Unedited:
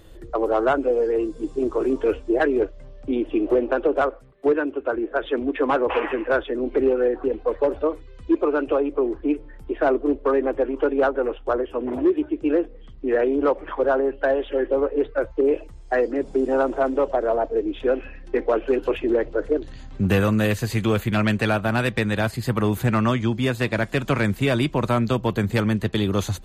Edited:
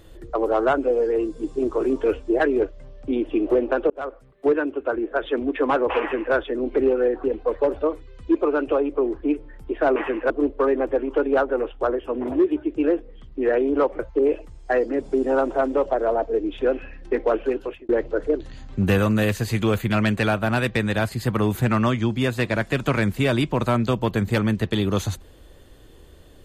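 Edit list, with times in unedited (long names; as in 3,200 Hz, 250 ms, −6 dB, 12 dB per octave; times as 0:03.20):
0:03.90–0:04.49: fade in equal-power
0:06.00–0:06.34: duplicate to 0:09.96
0:13.65–0:15.21: remove
0:18.60–0:19.11: fade out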